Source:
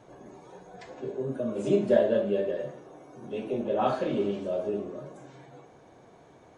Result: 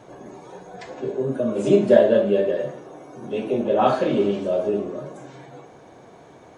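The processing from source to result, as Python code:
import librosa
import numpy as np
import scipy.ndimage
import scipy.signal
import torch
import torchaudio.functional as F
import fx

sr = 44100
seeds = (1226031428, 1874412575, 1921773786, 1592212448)

y = fx.low_shelf(x, sr, hz=69.0, db=-6.5)
y = y * librosa.db_to_amplitude(8.0)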